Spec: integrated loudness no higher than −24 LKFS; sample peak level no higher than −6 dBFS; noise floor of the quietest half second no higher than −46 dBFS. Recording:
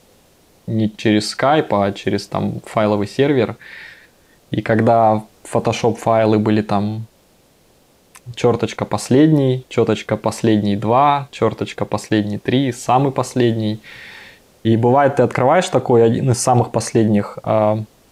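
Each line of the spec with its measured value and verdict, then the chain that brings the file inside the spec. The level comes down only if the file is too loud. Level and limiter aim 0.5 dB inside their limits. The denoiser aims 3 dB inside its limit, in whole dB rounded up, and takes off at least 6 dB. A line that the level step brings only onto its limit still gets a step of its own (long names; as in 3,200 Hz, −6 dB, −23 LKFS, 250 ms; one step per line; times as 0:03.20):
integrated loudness −17.0 LKFS: out of spec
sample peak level −3.0 dBFS: out of spec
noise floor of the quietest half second −54 dBFS: in spec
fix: level −7.5 dB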